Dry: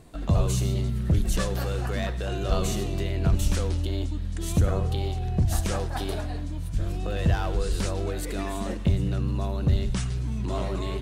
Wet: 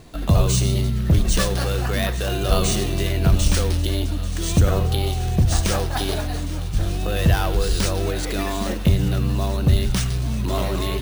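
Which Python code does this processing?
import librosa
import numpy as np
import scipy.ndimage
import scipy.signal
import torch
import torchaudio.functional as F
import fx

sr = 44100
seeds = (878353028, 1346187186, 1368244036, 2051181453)

p1 = fx.high_shelf(x, sr, hz=2800.0, db=8.5)
p2 = p1 + fx.echo_thinned(p1, sr, ms=836, feedback_pct=79, hz=400.0, wet_db=-16.0, dry=0)
p3 = np.repeat(scipy.signal.resample_poly(p2, 1, 3), 3)[:len(p2)]
y = p3 * 10.0 ** (5.5 / 20.0)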